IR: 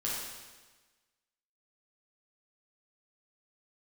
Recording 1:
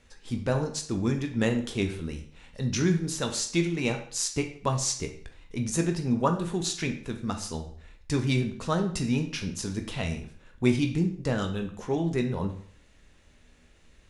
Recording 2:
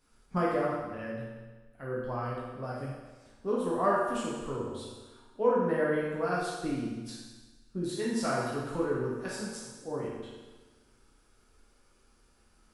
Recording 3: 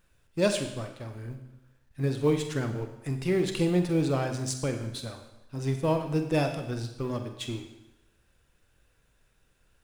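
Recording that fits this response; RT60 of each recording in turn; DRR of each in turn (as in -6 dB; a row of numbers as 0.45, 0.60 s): 2; 0.55, 1.3, 0.90 s; 4.5, -6.5, 5.5 dB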